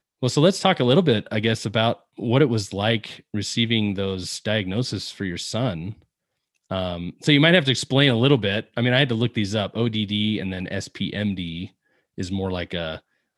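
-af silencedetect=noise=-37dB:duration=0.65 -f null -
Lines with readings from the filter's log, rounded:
silence_start: 5.93
silence_end: 6.71 | silence_duration: 0.78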